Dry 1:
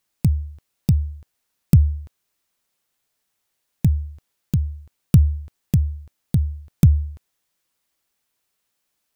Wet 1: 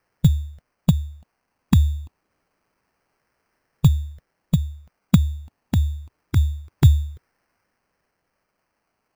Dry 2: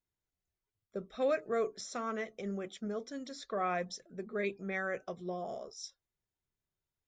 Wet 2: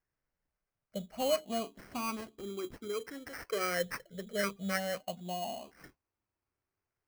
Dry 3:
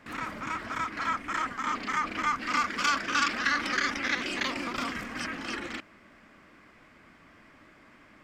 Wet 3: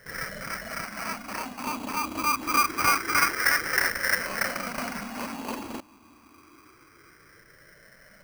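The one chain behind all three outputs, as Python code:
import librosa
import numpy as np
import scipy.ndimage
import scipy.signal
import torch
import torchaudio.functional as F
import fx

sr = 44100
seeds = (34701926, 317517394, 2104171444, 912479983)

y = fx.spec_ripple(x, sr, per_octave=0.55, drift_hz=0.26, depth_db=20)
y = fx.sample_hold(y, sr, seeds[0], rate_hz=3600.0, jitter_pct=0)
y = y * librosa.db_to_amplitude(-3.0)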